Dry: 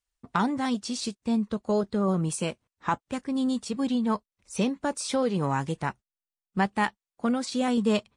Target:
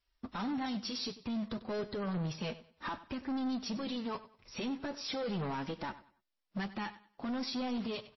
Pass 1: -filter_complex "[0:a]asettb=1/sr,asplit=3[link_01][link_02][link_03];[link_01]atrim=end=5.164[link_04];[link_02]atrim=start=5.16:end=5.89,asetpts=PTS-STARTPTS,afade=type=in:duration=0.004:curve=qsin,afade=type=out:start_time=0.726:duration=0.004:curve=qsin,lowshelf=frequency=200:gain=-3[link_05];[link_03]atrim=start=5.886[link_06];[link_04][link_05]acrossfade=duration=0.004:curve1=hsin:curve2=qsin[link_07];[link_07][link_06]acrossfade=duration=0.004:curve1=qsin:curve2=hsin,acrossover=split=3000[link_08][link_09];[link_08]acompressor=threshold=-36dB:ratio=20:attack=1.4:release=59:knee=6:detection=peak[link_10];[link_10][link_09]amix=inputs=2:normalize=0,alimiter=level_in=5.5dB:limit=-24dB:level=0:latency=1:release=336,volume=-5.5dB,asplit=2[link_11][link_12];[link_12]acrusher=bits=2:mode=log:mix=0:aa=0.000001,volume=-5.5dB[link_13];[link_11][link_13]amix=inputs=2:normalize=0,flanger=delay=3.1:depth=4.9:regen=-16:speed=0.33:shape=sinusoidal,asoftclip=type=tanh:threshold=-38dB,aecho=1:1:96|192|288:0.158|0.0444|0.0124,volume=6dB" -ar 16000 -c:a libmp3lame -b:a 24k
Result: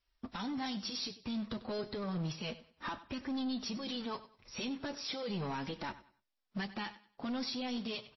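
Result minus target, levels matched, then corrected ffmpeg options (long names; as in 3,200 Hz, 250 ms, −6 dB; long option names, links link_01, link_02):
downward compressor: peak gain reduction +8 dB
-filter_complex "[0:a]asettb=1/sr,asplit=3[link_01][link_02][link_03];[link_01]atrim=end=5.164[link_04];[link_02]atrim=start=5.16:end=5.89,asetpts=PTS-STARTPTS,afade=type=in:duration=0.004:curve=qsin,afade=type=out:start_time=0.726:duration=0.004:curve=qsin,lowshelf=frequency=200:gain=-3[link_05];[link_03]atrim=start=5.886[link_06];[link_04][link_05]acrossfade=duration=0.004:curve1=hsin:curve2=qsin[link_07];[link_07][link_06]acrossfade=duration=0.004:curve1=qsin:curve2=hsin,acrossover=split=3000[link_08][link_09];[link_08]acompressor=threshold=-27.5dB:ratio=20:attack=1.4:release=59:knee=6:detection=peak[link_10];[link_10][link_09]amix=inputs=2:normalize=0,alimiter=level_in=5.5dB:limit=-24dB:level=0:latency=1:release=336,volume=-5.5dB,asplit=2[link_11][link_12];[link_12]acrusher=bits=2:mode=log:mix=0:aa=0.000001,volume=-5.5dB[link_13];[link_11][link_13]amix=inputs=2:normalize=0,flanger=delay=3.1:depth=4.9:regen=-16:speed=0.33:shape=sinusoidal,asoftclip=type=tanh:threshold=-38dB,aecho=1:1:96|192|288:0.158|0.0444|0.0124,volume=6dB" -ar 16000 -c:a libmp3lame -b:a 24k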